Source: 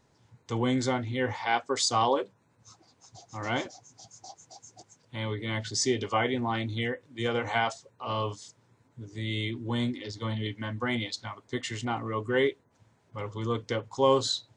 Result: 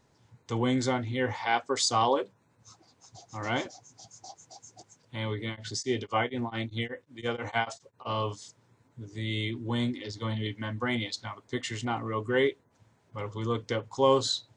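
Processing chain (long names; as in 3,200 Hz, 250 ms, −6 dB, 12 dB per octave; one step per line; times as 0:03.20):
0:05.48–0:08.05: tremolo along a rectified sine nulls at 3.5 Hz → 8.4 Hz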